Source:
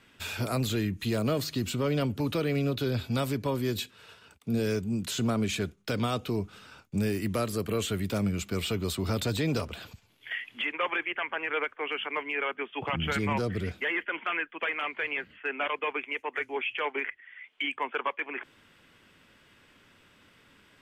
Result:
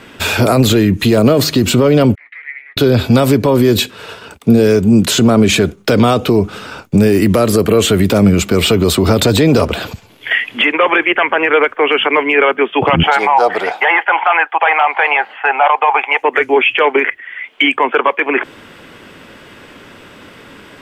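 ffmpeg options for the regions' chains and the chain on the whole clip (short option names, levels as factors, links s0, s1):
-filter_complex "[0:a]asettb=1/sr,asplit=3[s0][s1][s2];[s0]atrim=end=2.154[s3];[s1]atrim=start=2.15:end=2.77,asetpts=PTS-STARTPTS,afade=t=in:d=0.004:c=qsin,afade=t=out:st=0.616:d=0.004:c=qsin,asoftclip=type=hard:threshold=0.0422,asuperpass=centerf=2000:order=4:qfactor=6.6,asplit=2[s4][s5];[s5]adelay=17,volume=0.2[s6];[s4][s6]amix=inputs=2:normalize=0,atrim=end_sample=27342[s7];[s2]atrim=start=2.766[s8];[s3][s7]acrossfade=d=0.004:c1=hsin:c2=qsin[s9];[s9][s8]acrossfade=d=0.004:c1=qsin:c2=hsin,asettb=1/sr,asplit=3[s10][s11][s12];[s10]atrim=end=13.034[s13];[s11]atrim=start=13.03:end=16.22,asetpts=PTS-STARTPTS,afade=t=in:d=0.004:c=qsin,afade=t=out:st=3.186:d=0.004:c=qsin,highpass=f=810:t=q:w=9.9,highshelf=f=6900:g=-9[s14];[s12]atrim=start=16.216[s15];[s13][s14]acrossfade=d=0.004:c1=hsin:c2=qsin[s16];[s16][s15]acrossfade=d=0.004:c1=qsin:c2=hsin,equalizer=f=480:t=o:w=2.7:g=7.5,alimiter=level_in=9.44:limit=0.891:release=50:level=0:latency=1,volume=0.891"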